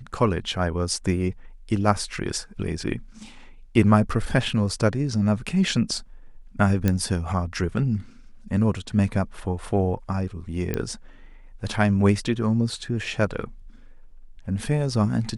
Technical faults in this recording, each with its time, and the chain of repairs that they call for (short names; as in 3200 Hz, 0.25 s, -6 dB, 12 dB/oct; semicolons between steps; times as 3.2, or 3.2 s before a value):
6.88 pop -9 dBFS
10.74 pop -12 dBFS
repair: de-click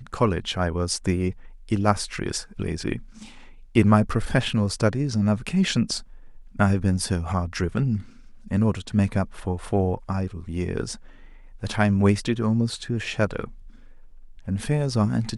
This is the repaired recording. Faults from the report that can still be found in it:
none